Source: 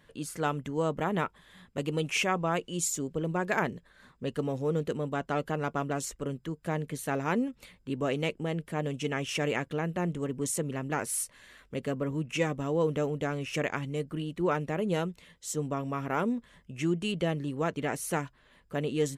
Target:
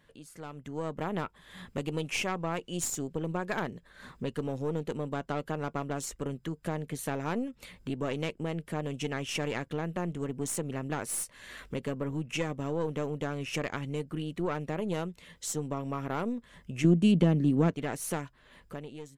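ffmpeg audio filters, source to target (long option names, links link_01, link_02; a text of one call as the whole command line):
ffmpeg -i in.wav -filter_complex "[0:a]aeval=exprs='(tanh(8.91*val(0)+0.65)-tanh(0.65))/8.91':channel_layout=same,acompressor=threshold=-55dB:ratio=2,asettb=1/sr,asplit=3[link_01][link_02][link_03];[link_01]atrim=end=16.844[link_04];[link_02]atrim=start=16.84:end=17.71,asetpts=PTS-STARTPTS,afade=type=in:duration=0.004:curve=qsin,afade=type=out:start_time=0.866:duration=0.004:curve=qsin,equalizer=frequency=210:width_type=o:width=1.6:gain=14.5[link_05];[link_03]atrim=start=17.706[link_06];[link_04][link_05]acrossfade=duration=0.004:curve1=hsin:curve2=qsin[link_07];[link_07][link_06]acrossfade=duration=0.004:curve1=qsin:curve2=hsin,dynaudnorm=framelen=160:gausssize=9:maxgain=14dB" out.wav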